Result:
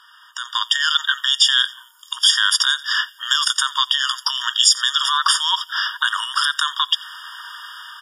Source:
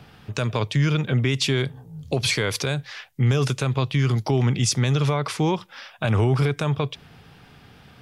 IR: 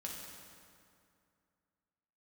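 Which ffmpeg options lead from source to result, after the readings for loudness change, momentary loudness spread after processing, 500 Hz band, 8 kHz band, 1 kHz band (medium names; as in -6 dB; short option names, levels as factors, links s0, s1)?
+6.0 dB, 19 LU, under -40 dB, +9.5 dB, +8.0 dB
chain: -filter_complex "[0:a]acrossover=split=1600[s0][s1];[s0]acompressor=threshold=0.0178:ratio=6[s2];[s1]asplit=4[s3][s4][s5][s6];[s4]adelay=88,afreqshift=-56,volume=0.075[s7];[s5]adelay=176,afreqshift=-112,volume=0.0316[s8];[s6]adelay=264,afreqshift=-168,volume=0.0132[s9];[s3][s7][s8][s9]amix=inputs=4:normalize=0[s10];[s2][s10]amix=inputs=2:normalize=0,alimiter=limit=0.0944:level=0:latency=1:release=223,dynaudnorm=f=150:g=7:m=5.01,afftfilt=real='re*eq(mod(floor(b*sr/1024/940),2),1)':imag='im*eq(mod(floor(b*sr/1024/940),2),1)':win_size=1024:overlap=0.75,volume=2.24"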